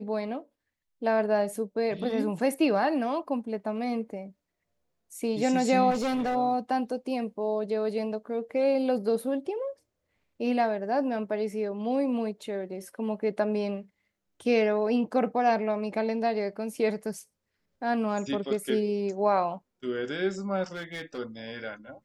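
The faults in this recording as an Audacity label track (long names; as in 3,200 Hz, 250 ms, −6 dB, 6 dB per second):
5.900000	6.360000	clipping −25 dBFS
20.720000	21.190000	clipping −32 dBFS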